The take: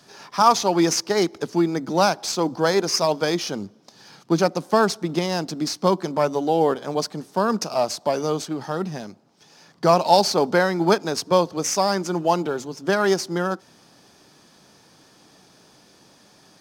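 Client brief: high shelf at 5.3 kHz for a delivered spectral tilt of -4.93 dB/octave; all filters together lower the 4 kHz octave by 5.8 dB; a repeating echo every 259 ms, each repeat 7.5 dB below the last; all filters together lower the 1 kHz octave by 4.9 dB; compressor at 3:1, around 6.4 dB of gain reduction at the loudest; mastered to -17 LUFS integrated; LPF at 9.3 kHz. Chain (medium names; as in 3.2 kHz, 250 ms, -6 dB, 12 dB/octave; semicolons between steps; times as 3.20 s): low-pass 9.3 kHz; peaking EQ 1 kHz -6 dB; peaking EQ 4 kHz -4.5 dB; treble shelf 5.3 kHz -5 dB; compression 3:1, threshold -23 dBFS; feedback delay 259 ms, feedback 42%, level -7.5 dB; trim +10.5 dB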